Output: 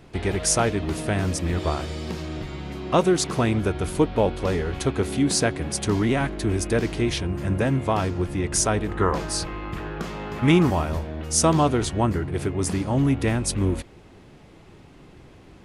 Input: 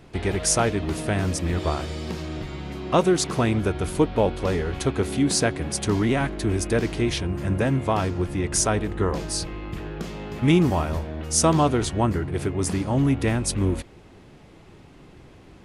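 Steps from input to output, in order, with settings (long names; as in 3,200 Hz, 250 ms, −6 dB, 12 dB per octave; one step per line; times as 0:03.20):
0:08.88–0:10.71: parametric band 1,200 Hz +7.5 dB 1.5 octaves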